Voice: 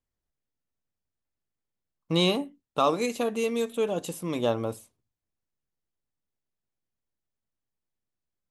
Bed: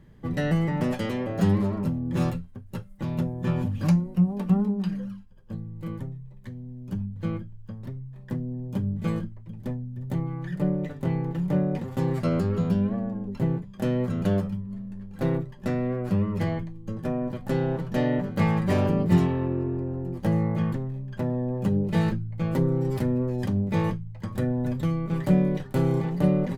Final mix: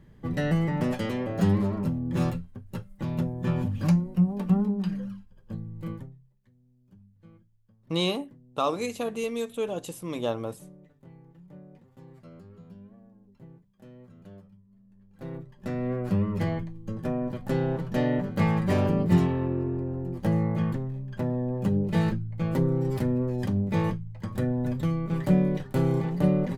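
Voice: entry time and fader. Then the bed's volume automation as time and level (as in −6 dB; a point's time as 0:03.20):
5.80 s, −3.0 dB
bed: 0:05.91 −1 dB
0:06.38 −24 dB
0:14.70 −24 dB
0:15.92 −1 dB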